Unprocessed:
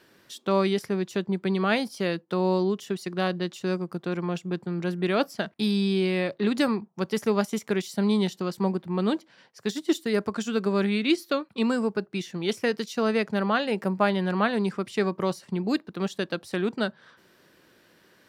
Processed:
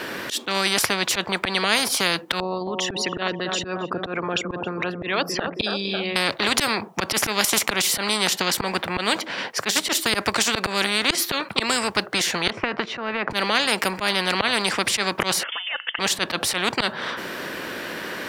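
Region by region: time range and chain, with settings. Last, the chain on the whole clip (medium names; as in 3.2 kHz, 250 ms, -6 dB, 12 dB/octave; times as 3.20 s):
2.40–6.16 s: resonances exaggerated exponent 2 + low-pass 3.4 kHz 6 dB/octave + filtered feedback delay 271 ms, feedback 54%, low-pass 1.1 kHz, level -13 dB
12.50–13.31 s: compression 3:1, threshold -29 dBFS + low-pass 1.3 kHz
15.43–15.99 s: compression, threshold -34 dBFS + static phaser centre 900 Hz, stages 6 + frequency inversion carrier 3.3 kHz
whole clip: FFT filter 150 Hz 0 dB, 260 Hz +7 dB, 2.4 kHz +9 dB, 5 kHz +3 dB; slow attack 115 ms; spectrum-flattening compressor 4:1; trim -1 dB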